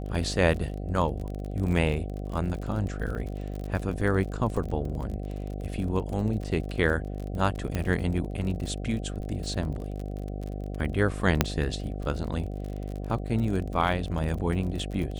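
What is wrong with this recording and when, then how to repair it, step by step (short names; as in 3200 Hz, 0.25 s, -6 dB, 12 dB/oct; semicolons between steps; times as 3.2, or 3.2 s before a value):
buzz 50 Hz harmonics 15 -34 dBFS
crackle 37/s -33 dBFS
3.15–3.16 gap 6 ms
7.75 pop -16 dBFS
11.41 pop -4 dBFS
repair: de-click; de-hum 50 Hz, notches 15; interpolate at 3.15, 6 ms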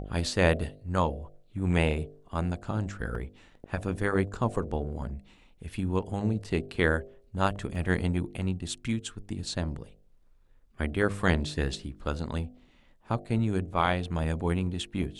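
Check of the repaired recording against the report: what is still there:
7.75 pop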